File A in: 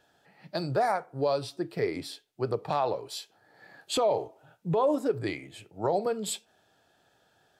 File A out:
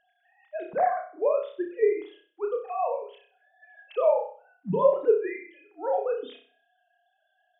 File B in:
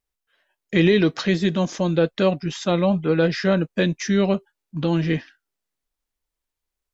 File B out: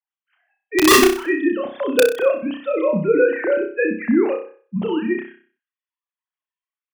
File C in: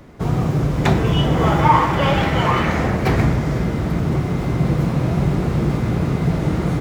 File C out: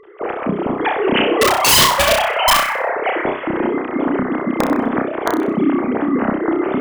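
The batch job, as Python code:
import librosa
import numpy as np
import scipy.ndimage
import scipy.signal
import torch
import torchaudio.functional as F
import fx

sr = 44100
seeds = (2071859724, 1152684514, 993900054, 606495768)

y = fx.sine_speech(x, sr)
y = (np.mod(10.0 ** (9.0 / 20.0) * y + 1.0, 2.0) - 1.0) / 10.0 ** (9.0 / 20.0)
y = fx.room_flutter(y, sr, wall_m=5.4, rt60_s=0.43)
y = F.gain(torch.from_numpy(y), 1.0).numpy()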